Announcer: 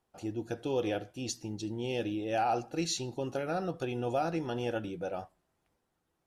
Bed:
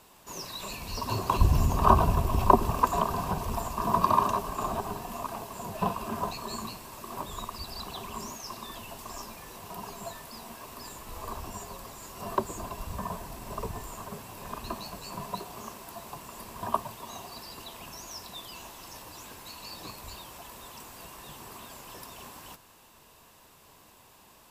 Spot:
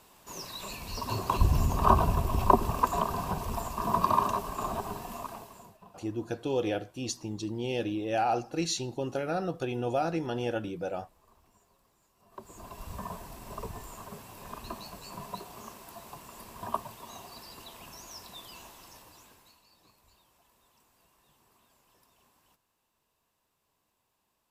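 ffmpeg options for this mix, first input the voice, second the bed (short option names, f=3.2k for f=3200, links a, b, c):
-filter_complex "[0:a]adelay=5800,volume=2dB[a];[1:a]volume=20dB,afade=t=out:st=5.1:d=0.69:silence=0.0630957,afade=t=in:st=12.31:d=0.59:silence=0.0794328,afade=t=out:st=18.57:d=1.07:silence=0.133352[b];[a][b]amix=inputs=2:normalize=0"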